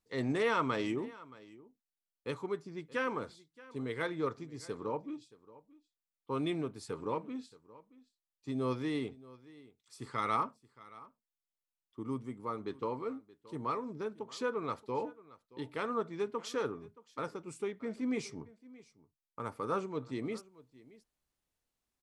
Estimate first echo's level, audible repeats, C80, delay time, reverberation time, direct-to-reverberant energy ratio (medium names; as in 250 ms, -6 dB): -20.5 dB, 1, no reverb, 625 ms, no reverb, no reverb